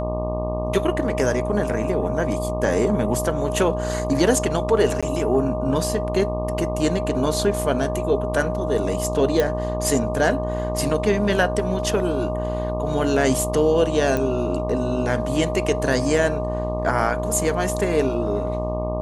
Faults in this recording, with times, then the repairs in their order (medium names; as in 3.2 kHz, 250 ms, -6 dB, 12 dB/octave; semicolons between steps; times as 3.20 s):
buzz 60 Hz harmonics 20 -27 dBFS
whine 620 Hz -26 dBFS
5.01–5.03 s: dropout 16 ms
9.40 s: pop
14.17 s: pop -11 dBFS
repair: de-click; de-hum 60 Hz, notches 20; band-stop 620 Hz, Q 30; interpolate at 5.01 s, 16 ms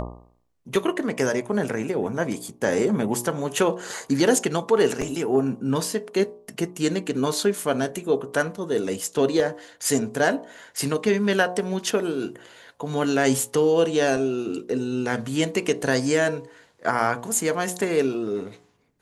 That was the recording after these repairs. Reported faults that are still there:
nothing left